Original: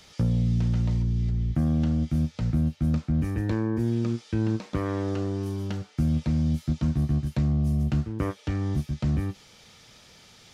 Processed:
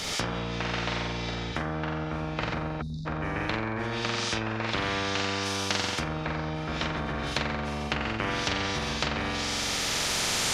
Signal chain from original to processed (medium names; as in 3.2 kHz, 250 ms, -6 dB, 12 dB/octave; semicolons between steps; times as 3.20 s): recorder AGC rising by 7.8 dB/s; flutter echo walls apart 7.7 m, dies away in 1 s; spectral selection erased 2.81–3.06 s, 260–3500 Hz; in parallel at -1 dB: peak limiter -19 dBFS, peak gain reduction 8 dB; on the sum: low-pass that closes with the level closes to 1.6 kHz, closed at -13.5 dBFS; spectrum-flattening compressor 4:1